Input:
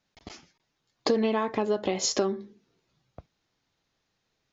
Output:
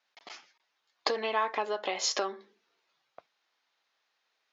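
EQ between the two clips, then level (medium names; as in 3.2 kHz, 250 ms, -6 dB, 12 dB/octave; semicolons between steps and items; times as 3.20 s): high-pass 830 Hz 12 dB/octave; distance through air 110 m; +4.0 dB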